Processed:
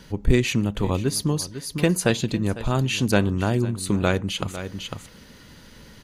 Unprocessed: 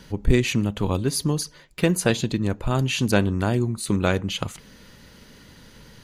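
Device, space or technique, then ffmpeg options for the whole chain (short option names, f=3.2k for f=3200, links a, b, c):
ducked delay: -filter_complex "[0:a]asplit=3[a][b][c];[b]adelay=501,volume=-5.5dB[d];[c]apad=whole_len=288382[e];[d][e]sidechaincompress=threshold=-34dB:ratio=4:attack=16:release=328[f];[a][f]amix=inputs=2:normalize=0"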